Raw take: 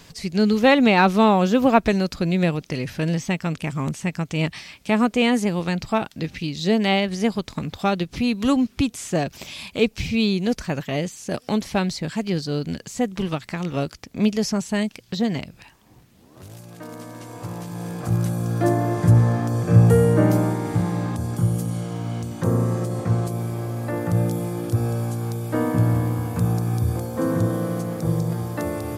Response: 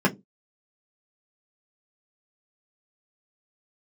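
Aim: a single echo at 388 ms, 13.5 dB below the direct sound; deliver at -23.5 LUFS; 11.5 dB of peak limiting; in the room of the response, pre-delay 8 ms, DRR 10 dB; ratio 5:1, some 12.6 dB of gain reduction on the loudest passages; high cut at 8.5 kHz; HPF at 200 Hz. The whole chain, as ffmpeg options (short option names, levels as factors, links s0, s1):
-filter_complex "[0:a]highpass=200,lowpass=8500,acompressor=threshold=0.0562:ratio=5,alimiter=limit=0.0668:level=0:latency=1,aecho=1:1:388:0.211,asplit=2[s0][s1];[1:a]atrim=start_sample=2205,adelay=8[s2];[s1][s2]afir=irnorm=-1:irlink=0,volume=0.0531[s3];[s0][s3]amix=inputs=2:normalize=0,volume=2.82"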